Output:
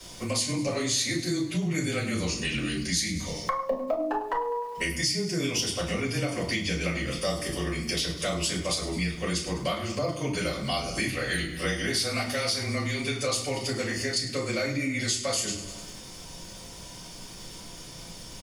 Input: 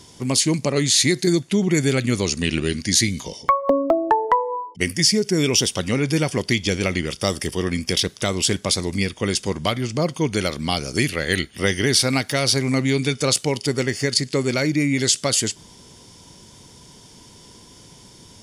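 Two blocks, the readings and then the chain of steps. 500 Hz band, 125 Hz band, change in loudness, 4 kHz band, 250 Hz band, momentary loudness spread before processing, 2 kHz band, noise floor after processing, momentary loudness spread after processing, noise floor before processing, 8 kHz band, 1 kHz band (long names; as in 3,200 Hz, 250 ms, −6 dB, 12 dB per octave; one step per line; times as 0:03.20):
−8.0 dB, −8.5 dB, −8.0 dB, −7.5 dB, −9.0 dB, 6 LU, −5.5 dB, −43 dBFS, 15 LU, −47 dBFS, −8.5 dB, −9.0 dB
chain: low-shelf EQ 480 Hz −8 dB
frequency shifter −20 Hz
surface crackle 450 per second −43 dBFS
repeating echo 101 ms, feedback 55%, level −15.5 dB
rectangular room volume 160 cubic metres, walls furnished, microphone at 5.7 metres
downward compressor 2.5 to 1, threshold −25 dBFS, peak gain reduction 14 dB
level −6 dB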